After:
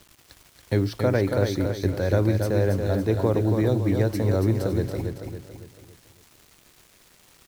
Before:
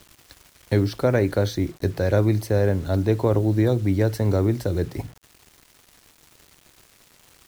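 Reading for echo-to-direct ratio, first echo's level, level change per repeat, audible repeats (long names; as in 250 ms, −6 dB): −4.5 dB, −5.5 dB, −7.0 dB, 5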